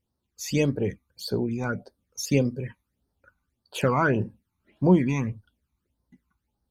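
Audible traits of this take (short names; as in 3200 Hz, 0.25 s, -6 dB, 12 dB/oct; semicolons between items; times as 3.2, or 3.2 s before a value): phasing stages 12, 1.7 Hz, lowest notch 510–2600 Hz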